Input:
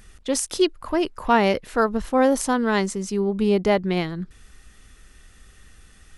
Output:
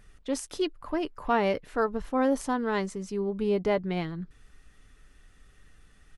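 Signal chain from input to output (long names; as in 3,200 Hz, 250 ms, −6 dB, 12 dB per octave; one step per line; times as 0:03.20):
high-shelf EQ 3,600 Hz −8 dB
comb filter 6.9 ms, depth 30%
level −6.5 dB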